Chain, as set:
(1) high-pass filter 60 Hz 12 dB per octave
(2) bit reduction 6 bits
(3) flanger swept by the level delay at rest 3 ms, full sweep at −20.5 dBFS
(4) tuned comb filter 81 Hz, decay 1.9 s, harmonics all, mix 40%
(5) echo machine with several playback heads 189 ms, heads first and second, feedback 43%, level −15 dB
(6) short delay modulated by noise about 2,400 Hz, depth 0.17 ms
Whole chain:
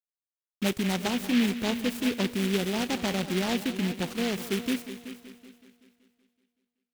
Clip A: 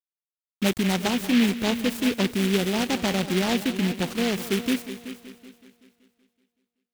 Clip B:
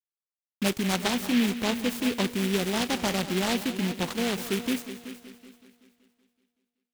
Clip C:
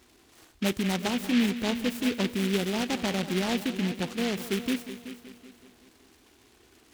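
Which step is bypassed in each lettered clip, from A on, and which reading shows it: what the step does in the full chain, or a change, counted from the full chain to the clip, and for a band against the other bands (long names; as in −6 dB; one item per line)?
4, change in integrated loudness +4.0 LU
3, change in integrated loudness +1.0 LU
2, distortion level −18 dB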